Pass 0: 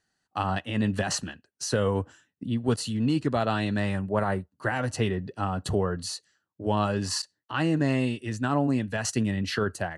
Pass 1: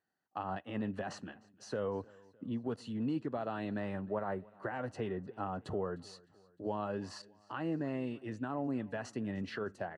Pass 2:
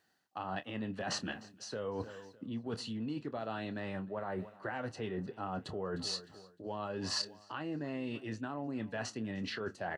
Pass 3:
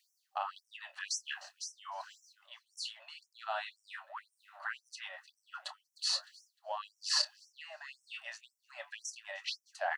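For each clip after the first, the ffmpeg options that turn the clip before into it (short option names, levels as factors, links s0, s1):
-af "alimiter=limit=0.112:level=0:latency=1:release=196,bandpass=f=540:t=q:w=0.52:csg=0,aecho=1:1:305|610|915:0.0631|0.0328|0.0171,volume=0.562"
-filter_complex "[0:a]areverse,acompressor=threshold=0.00501:ratio=6,areverse,equalizer=f=4200:t=o:w=1.8:g=8,asplit=2[s0][s1];[s1]adelay=27,volume=0.237[s2];[s0][s2]amix=inputs=2:normalize=0,volume=2.82"
-af "afftfilt=real='re*gte(b*sr/1024,520*pow(5400/520,0.5+0.5*sin(2*PI*1.9*pts/sr)))':imag='im*gte(b*sr/1024,520*pow(5400/520,0.5+0.5*sin(2*PI*1.9*pts/sr)))':win_size=1024:overlap=0.75,volume=1.88"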